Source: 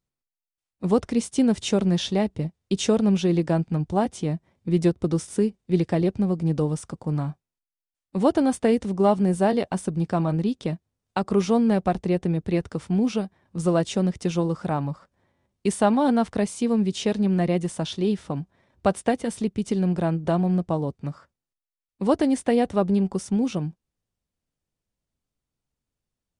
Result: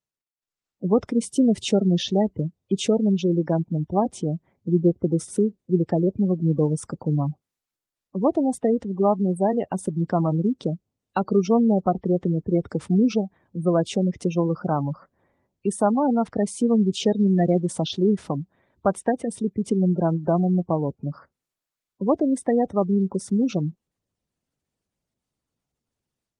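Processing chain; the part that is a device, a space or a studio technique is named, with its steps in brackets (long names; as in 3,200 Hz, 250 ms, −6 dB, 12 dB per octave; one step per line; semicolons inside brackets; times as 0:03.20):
noise-suppressed video call (high-pass filter 110 Hz 6 dB per octave; gate on every frequency bin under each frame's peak −20 dB strong; automatic gain control gain up to 13 dB; level −7 dB; Opus 24 kbit/s 48,000 Hz)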